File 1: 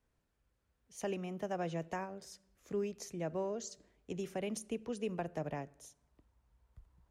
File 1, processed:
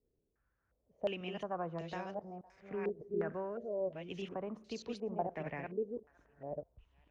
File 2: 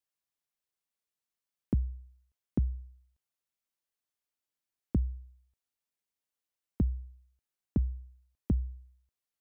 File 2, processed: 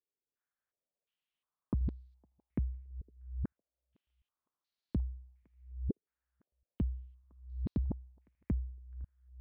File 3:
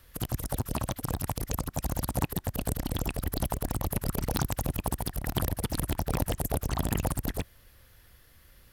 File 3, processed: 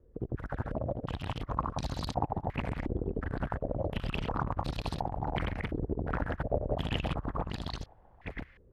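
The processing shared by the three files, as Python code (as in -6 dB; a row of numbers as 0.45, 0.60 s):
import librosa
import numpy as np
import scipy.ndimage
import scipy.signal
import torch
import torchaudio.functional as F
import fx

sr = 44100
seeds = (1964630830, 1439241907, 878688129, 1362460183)

p1 = fx.reverse_delay(x, sr, ms=603, wet_db=-4.0)
p2 = 10.0 ** (-28.5 / 20.0) * np.tanh(p1 / 10.0 ** (-28.5 / 20.0))
p3 = p1 + (p2 * 10.0 ** (-9.5 / 20.0))
p4 = fx.echo_thinned(p3, sr, ms=509, feedback_pct=43, hz=990.0, wet_db=-23.0)
p5 = fx.filter_held_lowpass(p4, sr, hz=2.8, low_hz=420.0, high_hz=4200.0)
y = p5 * 10.0 ** (-6.5 / 20.0)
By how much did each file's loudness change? -0.5, -5.5, -3.5 LU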